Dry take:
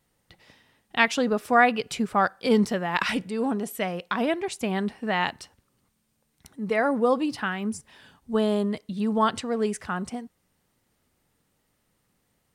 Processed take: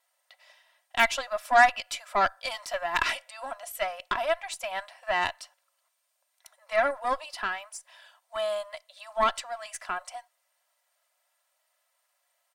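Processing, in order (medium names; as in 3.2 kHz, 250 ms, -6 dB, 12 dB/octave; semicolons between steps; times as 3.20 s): brick-wall FIR high-pass 510 Hz; Chebyshev shaper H 8 -23 dB, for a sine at -4 dBFS; comb 3 ms, depth 58%; trim -2 dB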